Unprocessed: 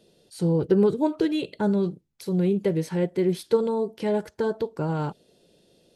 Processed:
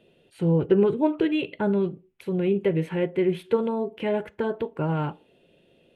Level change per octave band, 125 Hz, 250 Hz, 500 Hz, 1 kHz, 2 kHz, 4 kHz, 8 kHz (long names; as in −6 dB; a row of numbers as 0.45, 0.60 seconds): 0.0 dB, −0.5 dB, 0.0 dB, +0.5 dB, +3.5 dB, −0.5 dB, below −10 dB